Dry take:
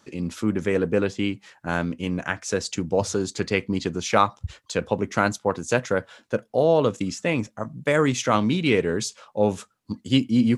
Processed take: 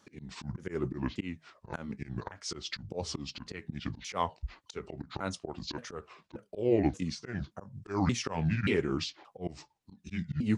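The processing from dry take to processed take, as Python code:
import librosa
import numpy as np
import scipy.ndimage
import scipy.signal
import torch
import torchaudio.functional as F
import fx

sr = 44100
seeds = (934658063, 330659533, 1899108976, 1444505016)

y = fx.pitch_ramps(x, sr, semitones=-9.0, every_ms=578)
y = fx.auto_swell(y, sr, attack_ms=167.0)
y = F.gain(torch.from_numpy(y), -5.5).numpy()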